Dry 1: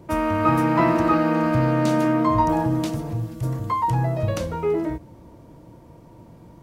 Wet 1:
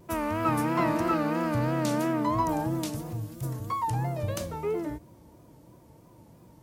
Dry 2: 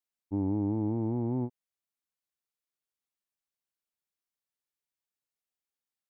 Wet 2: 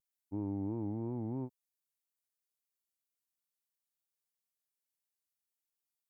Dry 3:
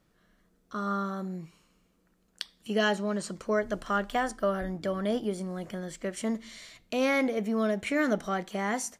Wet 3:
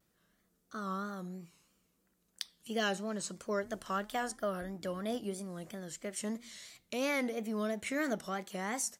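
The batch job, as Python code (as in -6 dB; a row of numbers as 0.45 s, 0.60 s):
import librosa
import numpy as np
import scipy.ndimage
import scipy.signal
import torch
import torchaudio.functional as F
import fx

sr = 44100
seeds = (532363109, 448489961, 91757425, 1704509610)

y = scipy.signal.sosfilt(scipy.signal.butter(2, 47.0, 'highpass', fs=sr, output='sos'), x)
y = fx.high_shelf(y, sr, hz=5500.0, db=12.0)
y = fx.vibrato(y, sr, rate_hz=3.0, depth_cents=98.0)
y = F.gain(torch.from_numpy(y), -7.5).numpy()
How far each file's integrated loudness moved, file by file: -7.5 LU, -7.5 LU, -7.0 LU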